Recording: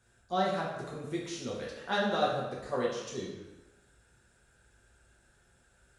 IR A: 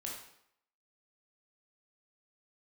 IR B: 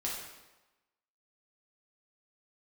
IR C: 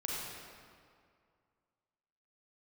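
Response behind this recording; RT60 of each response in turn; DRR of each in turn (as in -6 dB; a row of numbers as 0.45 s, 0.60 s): B; 0.70 s, 1.1 s, 2.2 s; -3.0 dB, -5.5 dB, -4.5 dB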